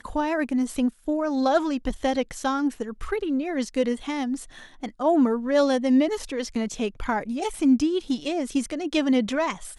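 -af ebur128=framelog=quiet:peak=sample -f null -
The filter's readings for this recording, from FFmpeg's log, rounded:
Integrated loudness:
  I:         -24.9 LUFS
  Threshold: -35.1 LUFS
Loudness range:
  LRA:         3.4 LU
  Threshold: -45.1 LUFS
  LRA low:   -27.0 LUFS
  LRA high:  -23.5 LUFS
Sample peak:
  Peak:       -9.2 dBFS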